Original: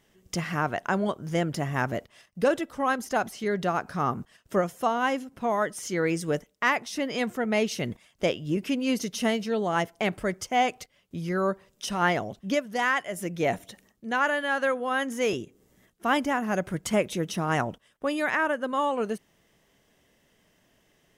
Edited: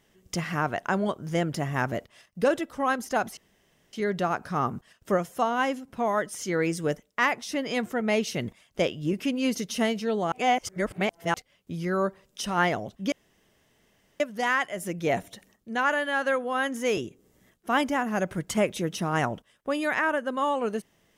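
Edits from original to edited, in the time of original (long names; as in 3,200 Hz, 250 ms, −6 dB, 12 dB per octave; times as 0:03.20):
0:03.37: splice in room tone 0.56 s
0:09.76–0:10.78: reverse
0:12.56: splice in room tone 1.08 s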